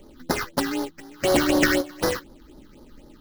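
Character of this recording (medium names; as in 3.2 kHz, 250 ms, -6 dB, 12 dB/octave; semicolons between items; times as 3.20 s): aliases and images of a low sample rate 3.6 kHz, jitter 20%; phasing stages 6, 4 Hz, lowest notch 590–2600 Hz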